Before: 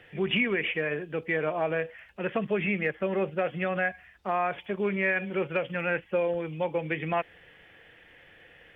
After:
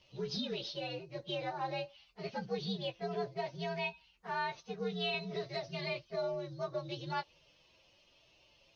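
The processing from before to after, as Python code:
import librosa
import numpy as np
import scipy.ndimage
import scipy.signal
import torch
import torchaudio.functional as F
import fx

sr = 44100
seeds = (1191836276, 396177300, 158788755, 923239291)

y = fx.partial_stretch(x, sr, pct=123)
y = fx.band_squash(y, sr, depth_pct=70, at=(5.14, 6.11))
y = y * 10.0 ** (-7.5 / 20.0)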